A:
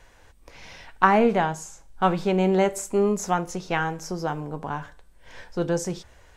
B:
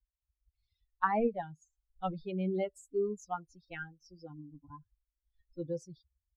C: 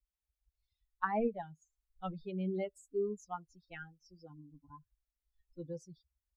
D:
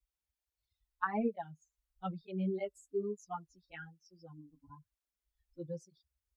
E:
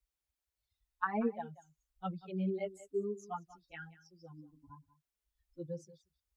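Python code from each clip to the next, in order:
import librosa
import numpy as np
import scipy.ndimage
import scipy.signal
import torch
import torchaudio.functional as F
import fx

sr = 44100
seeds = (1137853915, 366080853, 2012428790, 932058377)

y1 = fx.bin_expand(x, sr, power=3.0)
y1 = scipy.signal.sosfilt(scipy.signal.bessel(2, 8200.0, 'lowpass', norm='mag', fs=sr, output='sos'), y1)
y1 = fx.high_shelf(y1, sr, hz=3100.0, db=-9.0)
y1 = y1 * librosa.db_to_amplitude(-7.5)
y2 = y1 + 0.32 * np.pad(y1, (int(4.7 * sr / 1000.0), 0))[:len(y1)]
y2 = y2 * librosa.db_to_amplitude(-4.5)
y3 = fx.flanger_cancel(y2, sr, hz=1.1, depth_ms=7.2)
y3 = y3 * librosa.db_to_amplitude(2.5)
y4 = y3 + 10.0 ** (-17.5 / 20.0) * np.pad(y3, (int(187 * sr / 1000.0), 0))[:len(y3)]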